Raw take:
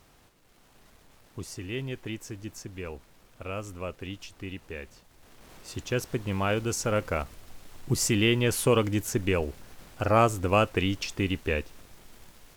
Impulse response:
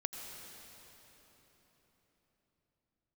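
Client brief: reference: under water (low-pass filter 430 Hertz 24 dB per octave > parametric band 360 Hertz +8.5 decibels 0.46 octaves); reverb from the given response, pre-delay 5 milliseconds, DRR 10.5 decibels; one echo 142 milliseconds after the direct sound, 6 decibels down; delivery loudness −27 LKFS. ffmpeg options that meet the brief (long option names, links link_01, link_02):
-filter_complex "[0:a]aecho=1:1:142:0.501,asplit=2[link_01][link_02];[1:a]atrim=start_sample=2205,adelay=5[link_03];[link_02][link_03]afir=irnorm=-1:irlink=0,volume=-11dB[link_04];[link_01][link_04]amix=inputs=2:normalize=0,lowpass=frequency=430:width=0.5412,lowpass=frequency=430:width=1.3066,equalizer=frequency=360:width_type=o:width=0.46:gain=8.5,volume=0.5dB"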